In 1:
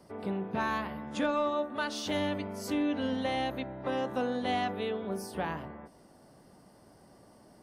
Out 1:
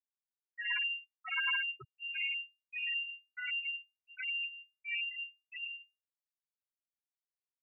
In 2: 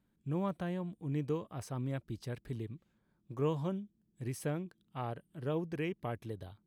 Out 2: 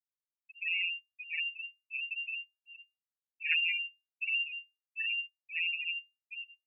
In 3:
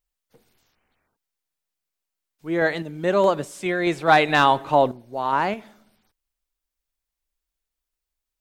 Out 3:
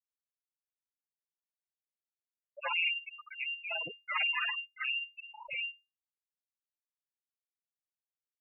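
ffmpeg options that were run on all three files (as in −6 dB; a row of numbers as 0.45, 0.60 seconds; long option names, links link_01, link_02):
-filter_complex "[0:a]areverse,acompressor=threshold=-35dB:ratio=6,areverse,adynamicequalizer=threshold=0.00224:dfrequency=340:dqfactor=0.75:tfrequency=340:tqfactor=0.75:attack=5:release=100:ratio=0.375:range=3:mode=cutabove:tftype=bell,dynaudnorm=framelen=310:gausssize=3:maxgain=16dB,aeval=exprs='0.299*(cos(1*acos(clip(val(0)/0.299,-1,1)))-cos(1*PI/2))+0.0266*(cos(3*acos(clip(val(0)/0.299,-1,1)))-cos(3*PI/2))+0.133*(cos(4*acos(clip(val(0)/0.299,-1,1)))-cos(4*PI/2))+0.00237*(cos(7*acos(clip(val(0)/0.299,-1,1)))-cos(7*PI/2))':channel_layout=same,flanger=delay=22.5:depth=2.1:speed=1,equalizer=frequency=1600:width_type=o:width=2:gain=4.5,acrossover=split=1900[link_01][link_02];[link_01]aeval=exprs='val(0)*(1-1/2+1/2*cos(2*PI*1.4*n/s))':channel_layout=same[link_03];[link_02]aeval=exprs='val(0)*(1-1/2-1/2*cos(2*PI*1.4*n/s))':channel_layout=same[link_04];[link_03][link_04]amix=inputs=2:normalize=0,afreqshift=18,aeval=exprs='clip(val(0),-1,0.0355)':channel_layout=same,afftfilt=real='re*gte(hypot(re,im),0.158)':imag='im*gte(hypot(re,im),0.158)':win_size=1024:overlap=0.75,lowpass=frequency=2400:width_type=q:width=0.5098,lowpass=frequency=2400:width_type=q:width=0.6013,lowpass=frequency=2400:width_type=q:width=0.9,lowpass=frequency=2400:width_type=q:width=2.563,afreqshift=-2800,volume=-4dB"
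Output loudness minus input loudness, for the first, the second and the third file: −3.0, +5.0, −12.5 LU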